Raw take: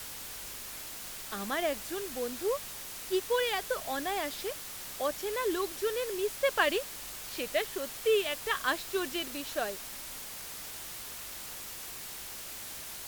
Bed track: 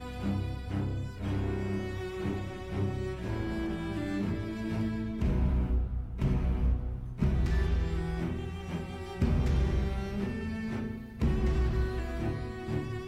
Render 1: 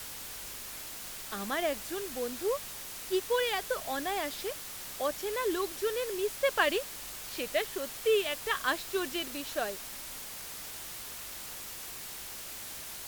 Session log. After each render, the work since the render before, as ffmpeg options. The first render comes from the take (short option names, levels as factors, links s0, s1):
-af anull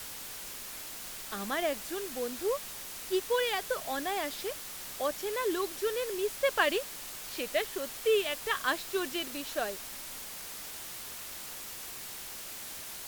-af "bandreject=f=50:t=h:w=4,bandreject=f=100:t=h:w=4,bandreject=f=150:t=h:w=4"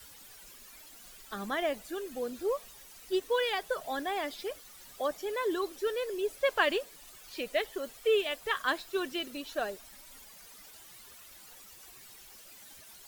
-af "afftdn=nr=13:nf=-43"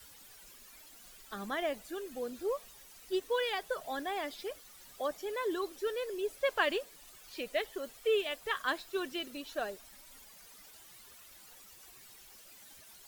-af "volume=0.708"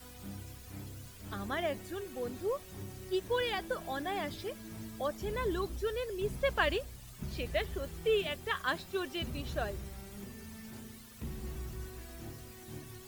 -filter_complex "[1:a]volume=0.211[s0];[0:a][s0]amix=inputs=2:normalize=0"